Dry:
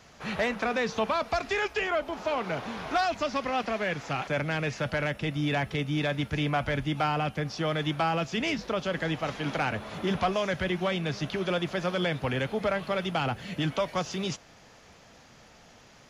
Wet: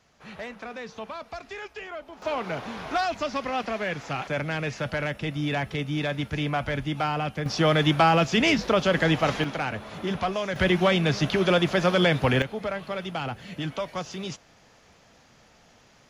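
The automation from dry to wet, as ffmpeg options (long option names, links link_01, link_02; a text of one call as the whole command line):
ffmpeg -i in.wav -af "asetnsamples=nb_out_samples=441:pad=0,asendcmd='2.22 volume volume 0.5dB;7.46 volume volume 8dB;9.44 volume volume -0.5dB;10.56 volume volume 7.5dB;12.42 volume volume -2.5dB',volume=-9.5dB" out.wav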